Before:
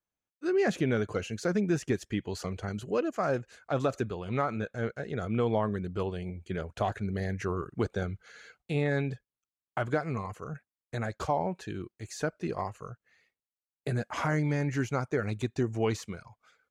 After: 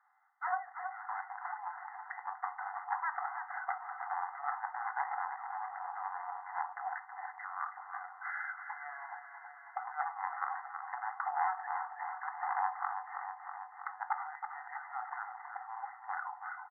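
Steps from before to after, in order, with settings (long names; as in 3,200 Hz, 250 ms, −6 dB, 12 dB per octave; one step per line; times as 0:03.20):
stylus tracing distortion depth 0.15 ms
spectral tilt −4 dB per octave
comb filter 1.5 ms, depth 39%
dynamic equaliser 1,500 Hz, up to −5 dB, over −43 dBFS, Q 0.87
compressor whose output falls as the input rises −24 dBFS, ratio −0.5
soft clipping −27 dBFS, distortion −9 dB
linear-phase brick-wall band-pass 720–2,100 Hz
repeating echo 323 ms, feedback 58%, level −9.5 dB
rectangular room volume 200 cubic metres, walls furnished, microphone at 0.71 metres
multiband upward and downward compressor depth 40%
level +11 dB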